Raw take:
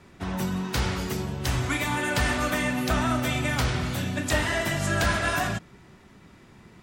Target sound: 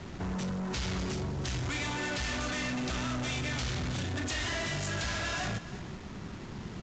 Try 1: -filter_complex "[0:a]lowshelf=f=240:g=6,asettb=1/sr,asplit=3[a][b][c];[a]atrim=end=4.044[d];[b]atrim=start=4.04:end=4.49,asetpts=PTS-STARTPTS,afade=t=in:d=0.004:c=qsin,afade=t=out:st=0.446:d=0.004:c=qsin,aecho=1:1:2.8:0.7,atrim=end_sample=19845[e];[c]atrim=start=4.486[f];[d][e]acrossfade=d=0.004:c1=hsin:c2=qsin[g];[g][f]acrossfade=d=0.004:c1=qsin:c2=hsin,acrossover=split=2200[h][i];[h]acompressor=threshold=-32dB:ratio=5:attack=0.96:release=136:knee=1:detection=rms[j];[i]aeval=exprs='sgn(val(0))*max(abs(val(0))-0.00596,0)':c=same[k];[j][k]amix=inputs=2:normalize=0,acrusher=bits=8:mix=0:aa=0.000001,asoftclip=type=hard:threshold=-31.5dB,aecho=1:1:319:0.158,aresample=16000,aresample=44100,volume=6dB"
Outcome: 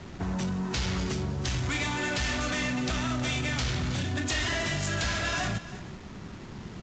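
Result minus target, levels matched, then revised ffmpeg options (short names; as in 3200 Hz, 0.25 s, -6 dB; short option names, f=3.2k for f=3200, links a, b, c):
hard clip: distortion -5 dB
-filter_complex "[0:a]lowshelf=f=240:g=6,asettb=1/sr,asplit=3[a][b][c];[a]atrim=end=4.044[d];[b]atrim=start=4.04:end=4.49,asetpts=PTS-STARTPTS,afade=t=in:d=0.004:c=qsin,afade=t=out:st=0.446:d=0.004:c=qsin,aecho=1:1:2.8:0.7,atrim=end_sample=19845[e];[c]atrim=start=4.486[f];[d][e]acrossfade=d=0.004:c1=hsin:c2=qsin[g];[g][f]acrossfade=d=0.004:c1=qsin:c2=hsin,acrossover=split=2200[h][i];[h]acompressor=threshold=-32dB:ratio=5:attack=0.96:release=136:knee=1:detection=rms[j];[i]aeval=exprs='sgn(val(0))*max(abs(val(0))-0.00596,0)':c=same[k];[j][k]amix=inputs=2:normalize=0,acrusher=bits=8:mix=0:aa=0.000001,asoftclip=type=hard:threshold=-37.5dB,aecho=1:1:319:0.158,aresample=16000,aresample=44100,volume=6dB"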